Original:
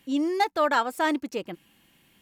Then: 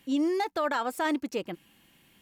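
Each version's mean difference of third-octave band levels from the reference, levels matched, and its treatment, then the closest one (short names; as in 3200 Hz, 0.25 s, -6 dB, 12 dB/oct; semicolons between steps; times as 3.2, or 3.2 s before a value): 2.0 dB: limiter -20 dBFS, peak gain reduction 8.5 dB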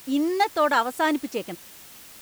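4.5 dB: requantised 8-bit, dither triangular; gain +2 dB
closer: first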